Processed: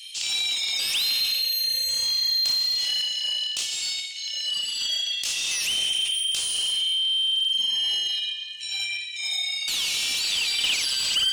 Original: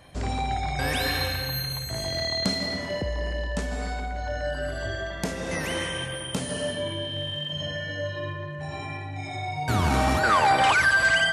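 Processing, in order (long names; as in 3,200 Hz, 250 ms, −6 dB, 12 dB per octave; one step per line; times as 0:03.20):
elliptic high-pass filter 2,800 Hz, stop band 50 dB
in parallel at +0.5 dB: compressor whose output falls as the input rises −43 dBFS, ratio −1
on the sum: mid-hump overdrive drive 18 dB, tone 5,400 Hz, clips at −14 dBFS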